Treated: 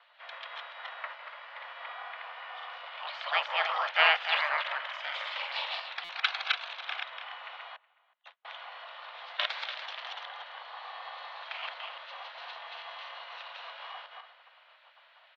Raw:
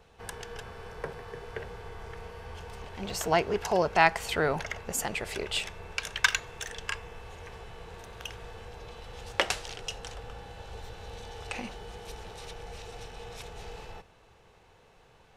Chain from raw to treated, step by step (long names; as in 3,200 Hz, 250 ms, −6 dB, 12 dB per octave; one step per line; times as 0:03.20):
feedback delay that plays each chunk backwards 145 ms, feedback 40%, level −1 dB
0:07.76–0:08.45: noise gate −34 dBFS, range −43 dB
gate on every frequency bin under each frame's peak −10 dB weak
0:01.14–0:01.64: tube saturation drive 40 dB, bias 0.5
single-sideband voice off tune +310 Hz 260–3,600 Hz
0:04.99–0:05.84: double-tracking delay 47 ms −5 dB
far-end echo of a speakerphone 370 ms, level −24 dB
buffer that repeats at 0:06.04, samples 256, times 8
level +2.5 dB